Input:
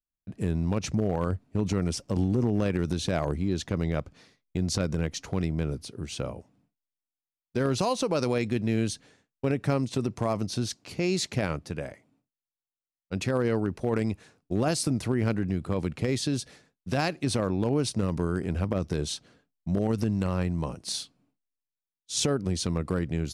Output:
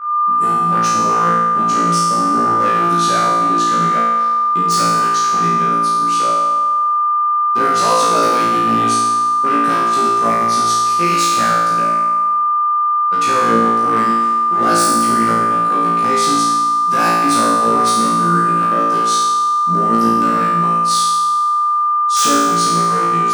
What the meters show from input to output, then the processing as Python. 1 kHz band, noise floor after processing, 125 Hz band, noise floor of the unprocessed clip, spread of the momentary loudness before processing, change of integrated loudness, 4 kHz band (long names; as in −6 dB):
+29.0 dB, −15 dBFS, +0.5 dB, below −85 dBFS, 8 LU, +15.5 dB, +12.5 dB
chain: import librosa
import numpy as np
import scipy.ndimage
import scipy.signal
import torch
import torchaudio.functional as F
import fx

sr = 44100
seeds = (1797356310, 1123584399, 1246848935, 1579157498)

p1 = fx.octave_divider(x, sr, octaves=1, level_db=-2.0)
p2 = fx.high_shelf(p1, sr, hz=4900.0, db=9.0)
p3 = 10.0 ** (-18.5 / 20.0) * (np.abs((p2 / 10.0 ** (-18.5 / 20.0) + 3.0) % 4.0 - 2.0) - 1.0)
p4 = scipy.signal.sosfilt(scipy.signal.butter(4, 180.0, 'highpass', fs=sr, output='sos'), p3)
p5 = p4 + 10.0 ** (-37.0 / 20.0) * np.sin(2.0 * np.pi * 1200.0 * np.arange(len(p4)) / sr)
p6 = fx.peak_eq(p5, sr, hz=1400.0, db=10.0, octaves=0.81)
p7 = p6 + fx.room_flutter(p6, sr, wall_m=3.0, rt60_s=1.3, dry=0)
y = F.gain(torch.from_numpy(p7), 1.0).numpy()